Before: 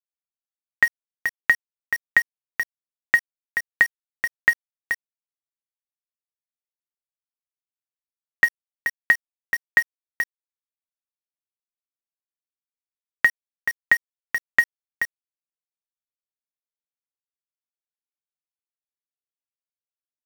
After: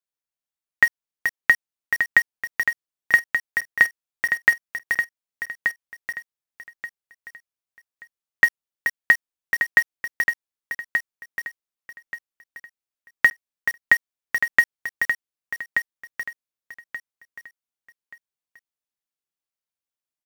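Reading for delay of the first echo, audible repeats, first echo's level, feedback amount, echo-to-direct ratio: 1,180 ms, 3, −7.0 dB, 27%, −6.5 dB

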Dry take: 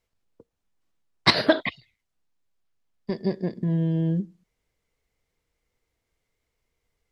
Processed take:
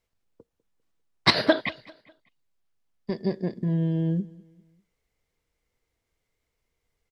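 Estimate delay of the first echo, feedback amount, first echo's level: 199 ms, 43%, −22.5 dB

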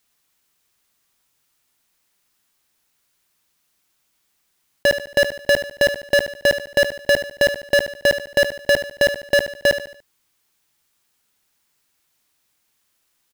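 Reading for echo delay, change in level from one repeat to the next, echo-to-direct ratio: 73 ms, −7.5 dB, −10.0 dB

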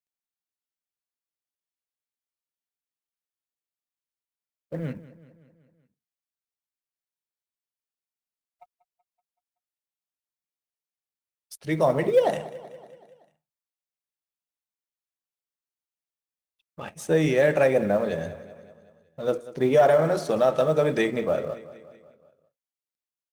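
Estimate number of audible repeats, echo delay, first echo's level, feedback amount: 4, 189 ms, −17.0 dB, 58%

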